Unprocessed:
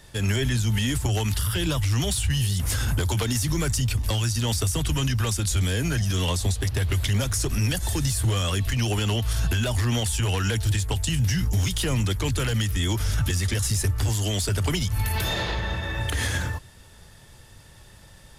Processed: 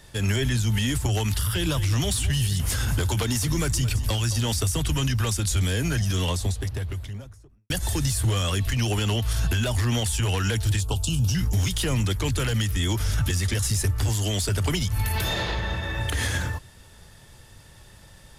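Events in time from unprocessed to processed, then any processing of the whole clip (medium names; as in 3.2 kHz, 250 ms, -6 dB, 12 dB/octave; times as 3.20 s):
1.43–4.59 s: delay 219 ms -14 dB
6.05–7.70 s: studio fade out
10.81–11.35 s: Butterworth band-stop 1.9 kHz, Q 1.4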